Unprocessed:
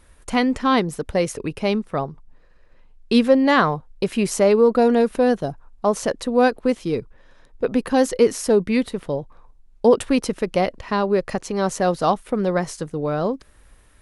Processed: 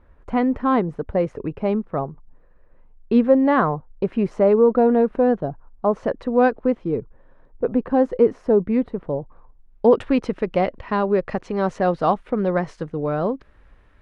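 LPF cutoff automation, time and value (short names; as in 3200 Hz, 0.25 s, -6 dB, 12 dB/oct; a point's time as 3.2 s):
5.92 s 1300 Hz
6.44 s 2000 Hz
6.87 s 1100 Hz
9.04 s 1100 Hz
9.94 s 2400 Hz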